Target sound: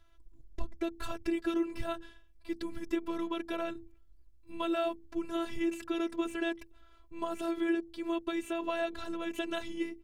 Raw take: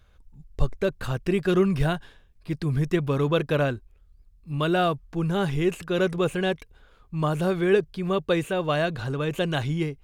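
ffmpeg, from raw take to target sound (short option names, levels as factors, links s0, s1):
-af "bandreject=f=60:t=h:w=6,bandreject=f=120:t=h:w=6,bandreject=f=180:t=h:w=6,bandreject=f=240:t=h:w=6,bandreject=f=300:t=h:w=6,bandreject=f=360:t=h:w=6,acompressor=threshold=0.0562:ratio=4,afftfilt=real='hypot(re,im)*cos(PI*b)':imag='0':win_size=512:overlap=0.75,asetrate=42845,aresample=44100,atempo=1.0293,volume=0.891"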